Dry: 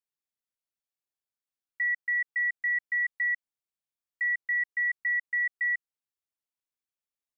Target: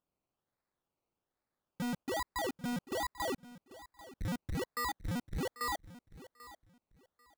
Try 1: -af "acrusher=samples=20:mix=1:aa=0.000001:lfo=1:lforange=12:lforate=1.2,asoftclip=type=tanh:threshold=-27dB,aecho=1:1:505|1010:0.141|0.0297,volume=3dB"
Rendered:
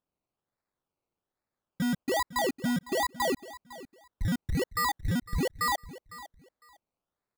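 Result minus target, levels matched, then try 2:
echo 286 ms early; soft clipping: distortion −9 dB
-af "acrusher=samples=20:mix=1:aa=0.000001:lfo=1:lforange=12:lforate=1.2,asoftclip=type=tanh:threshold=-37dB,aecho=1:1:791|1582:0.141|0.0297,volume=3dB"

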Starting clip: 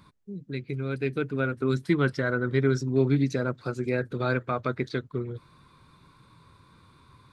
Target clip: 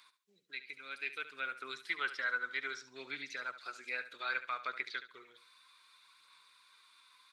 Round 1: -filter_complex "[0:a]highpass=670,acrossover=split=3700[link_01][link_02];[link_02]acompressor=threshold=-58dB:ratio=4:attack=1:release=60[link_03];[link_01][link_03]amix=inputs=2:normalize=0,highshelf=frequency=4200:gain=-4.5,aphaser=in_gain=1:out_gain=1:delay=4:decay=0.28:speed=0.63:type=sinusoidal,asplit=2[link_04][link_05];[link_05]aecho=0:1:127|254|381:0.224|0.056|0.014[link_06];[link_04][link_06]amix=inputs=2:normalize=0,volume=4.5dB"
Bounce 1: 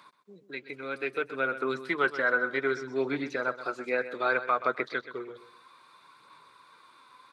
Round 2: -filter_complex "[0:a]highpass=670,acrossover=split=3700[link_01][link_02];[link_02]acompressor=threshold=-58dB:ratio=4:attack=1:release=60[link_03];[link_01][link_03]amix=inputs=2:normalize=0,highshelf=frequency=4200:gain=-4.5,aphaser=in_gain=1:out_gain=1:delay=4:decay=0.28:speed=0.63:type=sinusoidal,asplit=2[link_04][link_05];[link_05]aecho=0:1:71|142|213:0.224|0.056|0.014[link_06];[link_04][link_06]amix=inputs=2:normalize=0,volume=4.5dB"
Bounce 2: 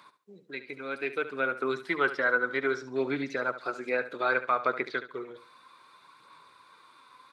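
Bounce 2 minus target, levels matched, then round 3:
500 Hz band +12.0 dB
-filter_complex "[0:a]highpass=2400,acrossover=split=3700[link_01][link_02];[link_02]acompressor=threshold=-58dB:ratio=4:attack=1:release=60[link_03];[link_01][link_03]amix=inputs=2:normalize=0,highshelf=frequency=4200:gain=-4.5,aphaser=in_gain=1:out_gain=1:delay=4:decay=0.28:speed=0.63:type=sinusoidal,asplit=2[link_04][link_05];[link_05]aecho=0:1:71|142|213:0.224|0.056|0.014[link_06];[link_04][link_06]amix=inputs=2:normalize=0,volume=4.5dB"

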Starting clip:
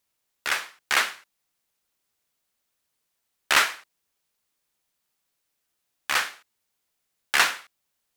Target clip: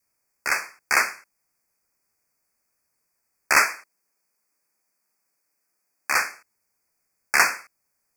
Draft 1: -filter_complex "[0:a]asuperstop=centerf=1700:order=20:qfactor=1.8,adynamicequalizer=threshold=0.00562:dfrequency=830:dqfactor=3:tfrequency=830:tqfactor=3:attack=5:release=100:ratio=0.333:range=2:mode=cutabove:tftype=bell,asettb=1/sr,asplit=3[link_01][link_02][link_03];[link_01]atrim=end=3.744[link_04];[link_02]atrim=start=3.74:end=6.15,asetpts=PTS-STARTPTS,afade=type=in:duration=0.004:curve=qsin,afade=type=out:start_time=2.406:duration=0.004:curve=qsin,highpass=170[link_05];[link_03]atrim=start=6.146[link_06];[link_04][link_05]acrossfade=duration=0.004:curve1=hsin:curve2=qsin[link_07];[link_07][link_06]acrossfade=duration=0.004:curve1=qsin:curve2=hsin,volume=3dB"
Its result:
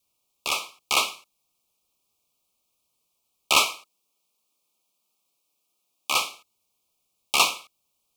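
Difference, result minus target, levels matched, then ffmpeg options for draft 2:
4,000 Hz band +9.5 dB
-filter_complex "[0:a]asuperstop=centerf=3400:order=20:qfactor=1.8,adynamicequalizer=threshold=0.00562:dfrequency=830:dqfactor=3:tfrequency=830:tqfactor=3:attack=5:release=100:ratio=0.333:range=2:mode=cutabove:tftype=bell,asettb=1/sr,asplit=3[link_01][link_02][link_03];[link_01]atrim=end=3.744[link_04];[link_02]atrim=start=3.74:end=6.15,asetpts=PTS-STARTPTS,afade=type=in:duration=0.004:curve=qsin,afade=type=out:start_time=2.406:duration=0.004:curve=qsin,highpass=170[link_05];[link_03]atrim=start=6.146[link_06];[link_04][link_05]acrossfade=duration=0.004:curve1=hsin:curve2=qsin[link_07];[link_07][link_06]acrossfade=duration=0.004:curve1=qsin:curve2=hsin,volume=3dB"

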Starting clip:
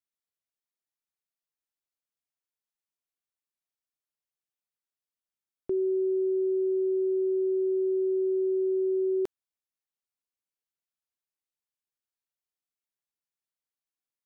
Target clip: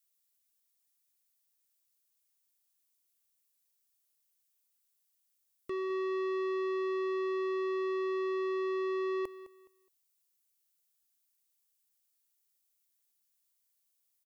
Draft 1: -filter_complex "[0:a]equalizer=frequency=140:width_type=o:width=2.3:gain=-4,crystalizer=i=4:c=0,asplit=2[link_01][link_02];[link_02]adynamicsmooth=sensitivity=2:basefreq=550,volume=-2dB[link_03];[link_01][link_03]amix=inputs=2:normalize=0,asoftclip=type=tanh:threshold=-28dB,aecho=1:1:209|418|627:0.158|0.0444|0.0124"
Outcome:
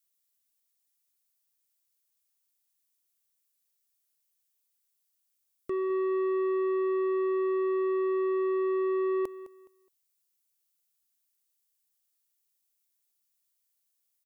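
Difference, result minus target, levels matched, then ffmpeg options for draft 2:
soft clipping: distortion −4 dB
-filter_complex "[0:a]equalizer=frequency=140:width_type=o:width=2.3:gain=-4,crystalizer=i=4:c=0,asplit=2[link_01][link_02];[link_02]adynamicsmooth=sensitivity=2:basefreq=550,volume=-2dB[link_03];[link_01][link_03]amix=inputs=2:normalize=0,asoftclip=type=tanh:threshold=-34dB,aecho=1:1:209|418|627:0.158|0.0444|0.0124"

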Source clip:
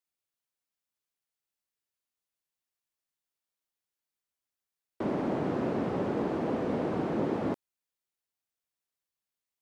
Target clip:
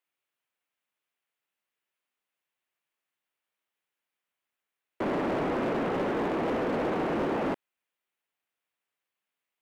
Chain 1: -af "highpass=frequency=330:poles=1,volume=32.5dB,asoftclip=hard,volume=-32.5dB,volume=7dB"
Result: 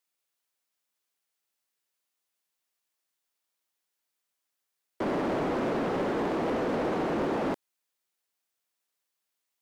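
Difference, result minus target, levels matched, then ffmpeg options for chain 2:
8,000 Hz band +3.5 dB
-af "highpass=frequency=330:poles=1,highshelf=frequency=3600:width_type=q:width=1.5:gain=-8.5,volume=32.5dB,asoftclip=hard,volume=-32.5dB,volume=7dB"

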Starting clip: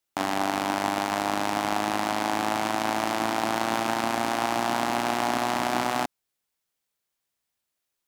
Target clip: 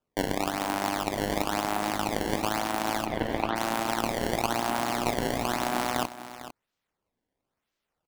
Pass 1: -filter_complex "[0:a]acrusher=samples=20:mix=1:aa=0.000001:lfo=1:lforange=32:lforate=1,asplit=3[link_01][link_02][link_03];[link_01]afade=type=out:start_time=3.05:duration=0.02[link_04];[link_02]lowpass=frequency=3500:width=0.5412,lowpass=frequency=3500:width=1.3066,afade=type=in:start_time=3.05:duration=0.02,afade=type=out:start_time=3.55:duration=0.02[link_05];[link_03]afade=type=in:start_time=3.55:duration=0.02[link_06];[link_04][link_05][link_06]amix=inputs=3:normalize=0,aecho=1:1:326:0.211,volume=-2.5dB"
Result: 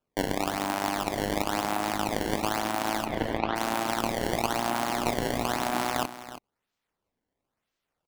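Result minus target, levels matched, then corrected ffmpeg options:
echo 125 ms early
-filter_complex "[0:a]acrusher=samples=20:mix=1:aa=0.000001:lfo=1:lforange=32:lforate=1,asplit=3[link_01][link_02][link_03];[link_01]afade=type=out:start_time=3.05:duration=0.02[link_04];[link_02]lowpass=frequency=3500:width=0.5412,lowpass=frequency=3500:width=1.3066,afade=type=in:start_time=3.05:duration=0.02,afade=type=out:start_time=3.55:duration=0.02[link_05];[link_03]afade=type=in:start_time=3.55:duration=0.02[link_06];[link_04][link_05][link_06]amix=inputs=3:normalize=0,aecho=1:1:451:0.211,volume=-2.5dB"

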